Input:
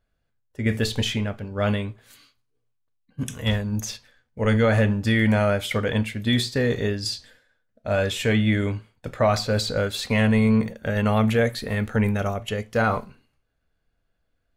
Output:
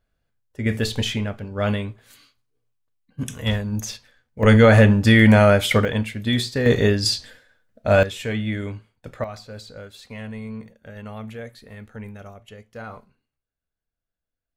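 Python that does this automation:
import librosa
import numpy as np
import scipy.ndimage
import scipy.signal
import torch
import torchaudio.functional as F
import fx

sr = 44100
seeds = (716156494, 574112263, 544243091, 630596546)

y = fx.gain(x, sr, db=fx.steps((0.0, 0.5), (4.43, 7.0), (5.85, 0.0), (6.66, 7.0), (8.03, -5.0), (9.24, -15.0)))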